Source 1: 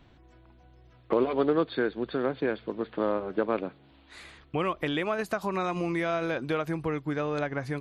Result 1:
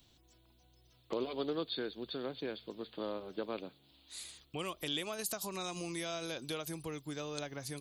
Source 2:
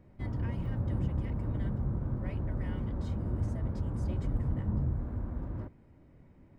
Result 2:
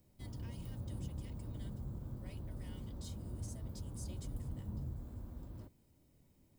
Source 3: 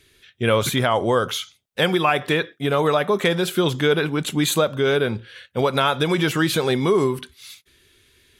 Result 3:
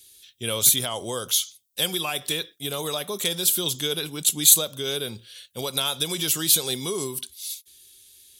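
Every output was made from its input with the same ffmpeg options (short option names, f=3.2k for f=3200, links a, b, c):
-filter_complex "[0:a]highshelf=f=2.6k:t=q:w=1.5:g=11.5,acrossover=split=560|5300[a][b][c];[c]crystalizer=i=3:c=0[d];[a][b][d]amix=inputs=3:normalize=0,volume=-11.5dB"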